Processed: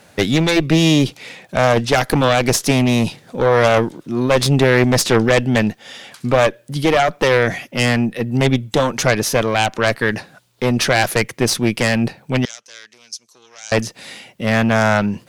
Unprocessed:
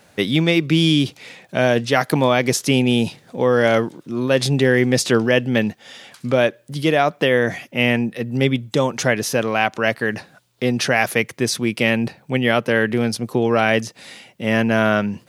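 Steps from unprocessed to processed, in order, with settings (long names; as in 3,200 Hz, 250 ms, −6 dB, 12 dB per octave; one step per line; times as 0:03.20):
harmonic generator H 4 −8 dB, 5 −14 dB, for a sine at −1.5 dBFS
0:12.45–0:13.72: resonant band-pass 6,100 Hz, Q 4.1
level −2 dB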